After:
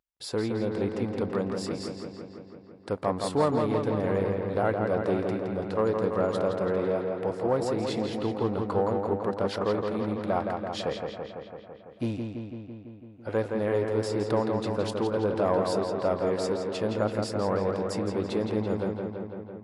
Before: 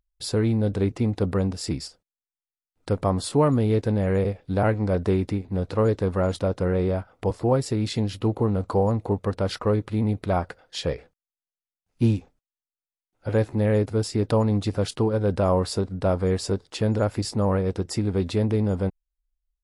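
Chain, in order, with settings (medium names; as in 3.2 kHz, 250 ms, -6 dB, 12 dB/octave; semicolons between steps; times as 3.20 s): single-diode clipper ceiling -12 dBFS; high-pass 440 Hz 6 dB/octave; treble shelf 3.4 kHz -8.5 dB; filtered feedback delay 167 ms, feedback 73%, low-pass 4.6 kHz, level -4.5 dB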